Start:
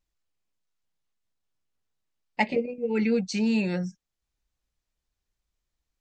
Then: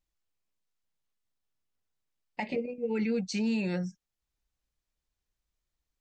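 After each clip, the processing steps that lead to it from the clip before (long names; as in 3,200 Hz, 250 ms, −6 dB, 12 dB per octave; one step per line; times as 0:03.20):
brickwall limiter −19.5 dBFS, peak gain reduction 11 dB
level −3 dB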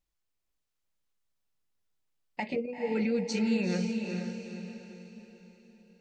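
feedback delay with all-pass diffusion 459 ms, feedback 44%, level −4.5 dB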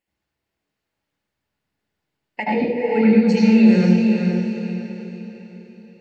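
convolution reverb RT60 0.90 s, pre-delay 75 ms, DRR −3 dB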